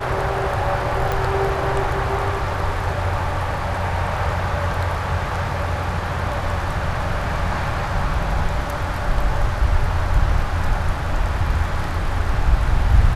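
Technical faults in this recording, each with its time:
1.12 pop -9 dBFS

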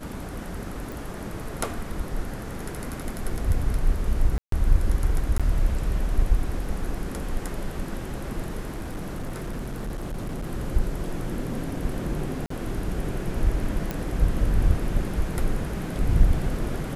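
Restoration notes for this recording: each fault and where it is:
0.92 pop
4.38–4.52 gap 0.143 s
5.38–5.4 gap 16 ms
8.74–10.47 clipped -27 dBFS
12.46–12.5 gap 44 ms
13.91 pop -14 dBFS

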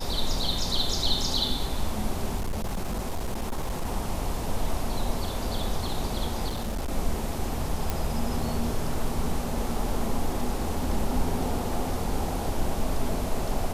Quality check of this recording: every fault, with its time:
2.37–3.87 clipped -25 dBFS
6.48–6.92 clipped -26 dBFS
7.9 pop

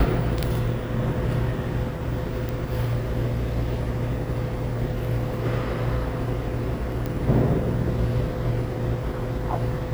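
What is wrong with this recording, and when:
2.49 pop
7.06 pop -16 dBFS

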